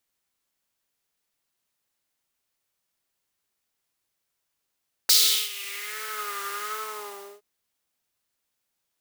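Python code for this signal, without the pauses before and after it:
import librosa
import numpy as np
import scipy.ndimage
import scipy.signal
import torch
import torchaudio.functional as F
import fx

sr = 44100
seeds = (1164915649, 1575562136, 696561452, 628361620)

y = fx.sub_patch_vibrato(sr, seeds[0], note=68, wave='triangle', wave2='saw', interval_st=0, detune_cents=16, level2_db=-17, sub_db=-16.5, noise_db=-13.0, kind='highpass', cutoff_hz=580.0, q=3.2, env_oct=3.0, env_decay_s=1.11, env_sustain_pct=40, attack_ms=8.4, decay_s=0.39, sustain_db=-19.5, release_s=0.71, note_s=1.61, lfo_hz=1.3, vibrato_cents=70)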